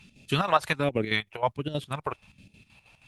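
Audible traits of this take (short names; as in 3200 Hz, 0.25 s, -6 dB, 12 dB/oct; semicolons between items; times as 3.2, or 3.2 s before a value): phasing stages 2, 1.3 Hz, lowest notch 220–1100 Hz; chopped level 6.3 Hz, depth 65%, duty 60%; Opus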